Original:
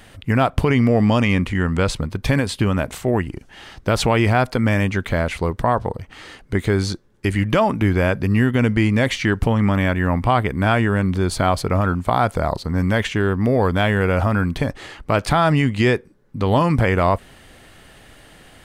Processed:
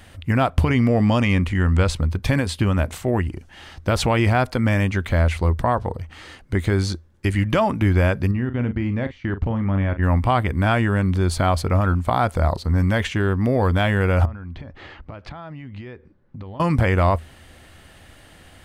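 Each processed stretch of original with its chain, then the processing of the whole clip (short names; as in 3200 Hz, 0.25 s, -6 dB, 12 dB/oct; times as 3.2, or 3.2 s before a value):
8.31–10.03 level quantiser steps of 20 dB + tape spacing loss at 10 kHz 27 dB + doubler 41 ms -11 dB
14.25–16.6 air absorption 220 m + compressor 8:1, threshold -31 dBFS
whole clip: bell 81 Hz +12 dB 0.29 oct; notch 430 Hz, Q 12; gain -2 dB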